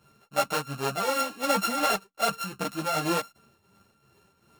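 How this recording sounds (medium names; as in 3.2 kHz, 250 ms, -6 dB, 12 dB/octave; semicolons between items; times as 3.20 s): a buzz of ramps at a fixed pitch in blocks of 32 samples; tremolo triangle 2.7 Hz, depth 65%; a shimmering, thickened sound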